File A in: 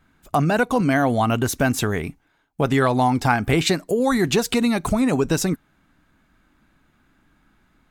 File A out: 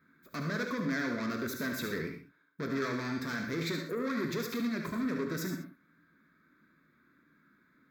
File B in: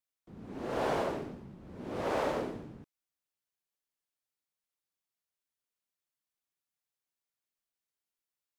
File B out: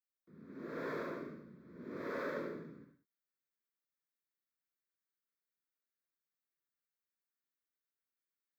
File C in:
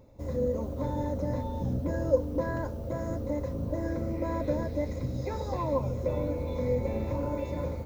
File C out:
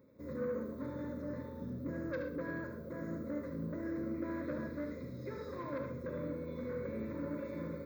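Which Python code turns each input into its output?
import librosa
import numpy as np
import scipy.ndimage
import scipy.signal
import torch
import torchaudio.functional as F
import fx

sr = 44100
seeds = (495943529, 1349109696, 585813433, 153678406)

p1 = fx.peak_eq(x, sr, hz=5800.0, db=-12.5, octaves=1.2)
p2 = fx.rider(p1, sr, range_db=4, speed_s=2.0)
p3 = 10.0 ** (-25.0 / 20.0) * np.tanh(p2 / 10.0 ** (-25.0 / 20.0))
p4 = scipy.signal.sosfilt(scipy.signal.butter(2, 210.0, 'highpass', fs=sr, output='sos'), p3)
p5 = fx.fixed_phaser(p4, sr, hz=2900.0, stages=6)
p6 = p5 + fx.echo_single(p5, sr, ms=73, db=-8.0, dry=0)
p7 = fx.rev_gated(p6, sr, seeds[0], gate_ms=150, shape='flat', drr_db=5.0)
y = F.gain(torch.from_numpy(p7), -3.5).numpy()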